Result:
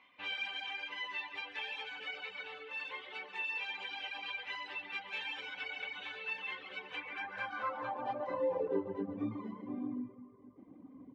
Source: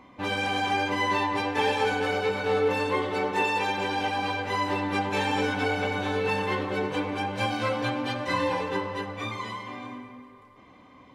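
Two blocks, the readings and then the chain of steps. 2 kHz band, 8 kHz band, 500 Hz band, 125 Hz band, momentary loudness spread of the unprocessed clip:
-10.0 dB, under -20 dB, -13.5 dB, -20.5 dB, 8 LU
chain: delay 138 ms -8 dB; reverb removal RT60 0.86 s; compression 2.5:1, threshold -29 dBFS, peak gain reduction 7 dB; bass shelf 140 Hz +7 dB; gain riding within 3 dB 0.5 s; band-pass sweep 2.8 kHz -> 270 Hz, 6.84–9.11 s; treble shelf 5.1 kHz -9.5 dB; trim +1 dB

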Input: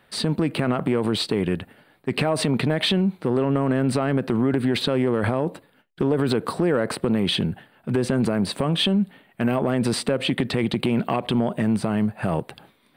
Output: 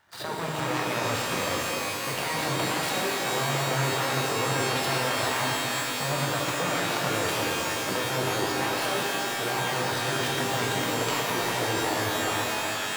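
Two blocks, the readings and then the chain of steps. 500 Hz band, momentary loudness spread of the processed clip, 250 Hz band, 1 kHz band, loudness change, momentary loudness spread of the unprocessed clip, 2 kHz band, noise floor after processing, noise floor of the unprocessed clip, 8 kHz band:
-5.0 dB, 2 LU, -12.0 dB, +4.0 dB, -3.5 dB, 6 LU, +4.5 dB, -31 dBFS, -59 dBFS, +7.5 dB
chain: median filter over 41 samples; high-pass 240 Hz 12 dB/octave; band-stop 2.6 kHz, Q 15; spectral gate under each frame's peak -10 dB weak; in parallel at 0 dB: compressor with a negative ratio -41 dBFS, ratio -0.5; on the sum: pitch-shifted reverb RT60 3.8 s, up +12 st, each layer -2 dB, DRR -2 dB

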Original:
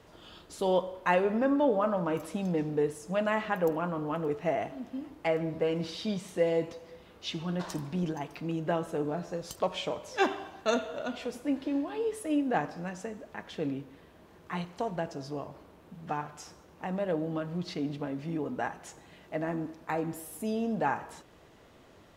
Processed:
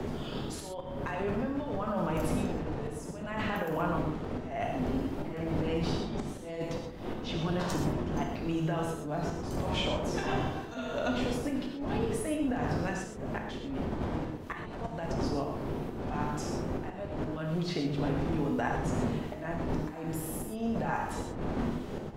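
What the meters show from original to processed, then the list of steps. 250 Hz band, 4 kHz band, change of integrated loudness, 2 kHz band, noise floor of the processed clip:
+0.5 dB, +1.0 dB, -1.5 dB, -1.5 dB, -41 dBFS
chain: wind noise 350 Hz -31 dBFS; hum notches 60/120/180/240/300 Hz; dynamic bell 410 Hz, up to -4 dB, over -38 dBFS, Q 1.9; wavefolder -15.5 dBFS; compressor with a negative ratio -33 dBFS, ratio -1; slow attack 325 ms; gated-style reverb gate 150 ms flat, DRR 1.5 dB; three bands compressed up and down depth 40%

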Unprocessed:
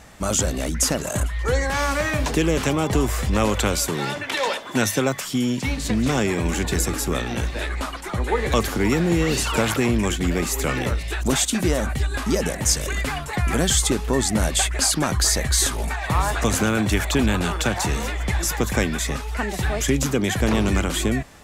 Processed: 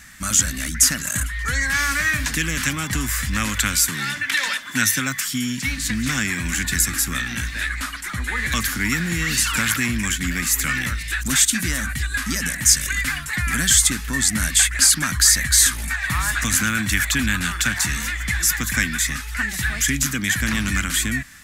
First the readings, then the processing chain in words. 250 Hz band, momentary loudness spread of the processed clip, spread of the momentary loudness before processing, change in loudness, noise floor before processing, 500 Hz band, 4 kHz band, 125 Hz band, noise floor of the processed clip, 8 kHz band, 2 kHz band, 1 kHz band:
-4.0 dB, 9 LU, 6 LU, +2.5 dB, -32 dBFS, -17.0 dB, +3.5 dB, -3.0 dB, -31 dBFS, +6.5 dB, +6.5 dB, -3.5 dB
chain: FFT filter 270 Hz 0 dB, 410 Hz -17 dB, 830 Hz -10 dB, 1.7 kHz +12 dB, 2.8 kHz +5 dB, 13 kHz +12 dB; trim -3 dB

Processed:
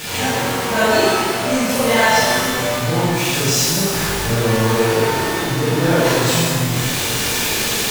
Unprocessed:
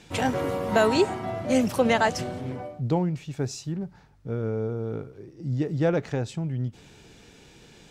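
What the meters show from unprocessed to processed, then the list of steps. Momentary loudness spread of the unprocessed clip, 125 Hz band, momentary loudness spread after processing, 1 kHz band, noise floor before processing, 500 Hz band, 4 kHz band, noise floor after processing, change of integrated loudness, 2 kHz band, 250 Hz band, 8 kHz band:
13 LU, +9.0 dB, 5 LU, +11.0 dB, -53 dBFS, +8.5 dB, +18.5 dB, -21 dBFS, +10.5 dB, +14.5 dB, +7.5 dB, +22.0 dB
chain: jump at every zero crossing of -24 dBFS; tilt shelf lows -4 dB, about 670 Hz; gain riding 2 s; reverse echo 42 ms -6.5 dB; pitch-shifted reverb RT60 1.8 s, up +12 st, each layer -8 dB, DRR -8 dB; trim -3.5 dB

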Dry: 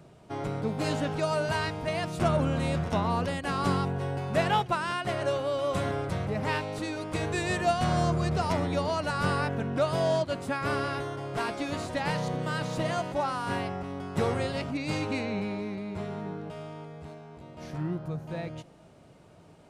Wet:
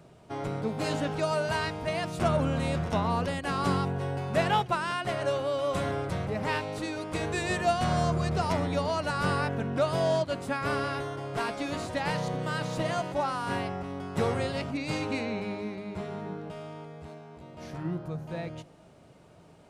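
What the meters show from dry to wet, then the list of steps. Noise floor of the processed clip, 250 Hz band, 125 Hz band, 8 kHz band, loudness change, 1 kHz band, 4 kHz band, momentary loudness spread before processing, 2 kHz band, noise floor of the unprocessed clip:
-55 dBFS, -1.0 dB, -1.0 dB, 0.0 dB, -0.5 dB, 0.0 dB, 0.0 dB, 10 LU, 0.0 dB, -54 dBFS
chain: hum notches 50/100/150/200/250/300/350 Hz

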